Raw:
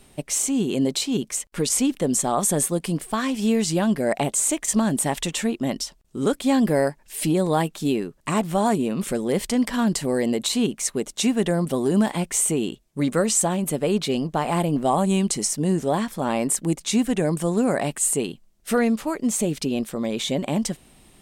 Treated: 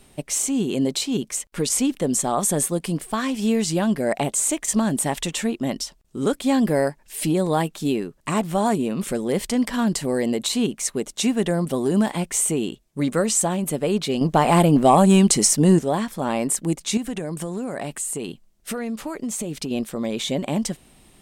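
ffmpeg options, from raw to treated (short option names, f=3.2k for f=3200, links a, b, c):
-filter_complex "[0:a]asettb=1/sr,asplit=3[a][b][c];[a]atrim=end=14.214[d];[b]atrim=start=14.21:end=15.79,asetpts=PTS-STARTPTS,afade=t=in:d=0.004:c=qsin,afade=t=out:st=1.576:d=0.004:c=qsin,acontrast=87[e];[c]atrim=start=15.786[f];[d][e]acrossfade=d=0.004:c1=hsin:c2=qsin[g];[g][f]acrossfade=d=0.004:c1=qsin:c2=hsin,asettb=1/sr,asplit=3[h][i][j];[h]atrim=end=16.974[k];[i]atrim=start=16.97:end=19.71,asetpts=PTS-STARTPTS,afade=t=in:d=0.004:c=qsin,afade=t=out:st=2.736:d=0.004:c=qsin,acompressor=threshold=-24dB:ratio=6:attack=3.2:release=140:knee=1:detection=peak[l];[j]atrim=start=19.706[m];[k][l]acrossfade=d=0.004:c1=hsin:c2=qsin[n];[n][m]acrossfade=d=0.004:c1=qsin:c2=hsin"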